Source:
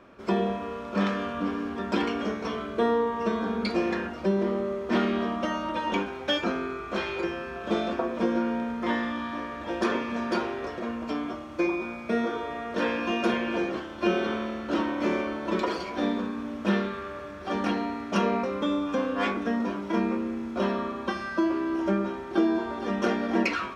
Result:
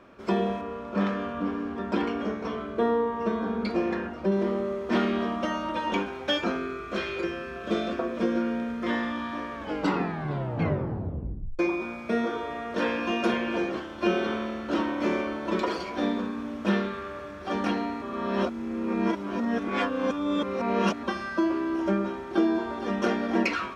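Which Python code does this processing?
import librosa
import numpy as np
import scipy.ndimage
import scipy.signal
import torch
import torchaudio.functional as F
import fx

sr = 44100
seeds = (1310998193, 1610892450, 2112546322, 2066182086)

y = fx.high_shelf(x, sr, hz=2500.0, db=-8.5, at=(0.61, 4.32))
y = fx.peak_eq(y, sr, hz=860.0, db=-13.0, octaves=0.28, at=(6.57, 8.93))
y = fx.edit(y, sr, fx.tape_stop(start_s=9.53, length_s=2.06),
    fx.reverse_span(start_s=18.02, length_s=3.01), tone=tone)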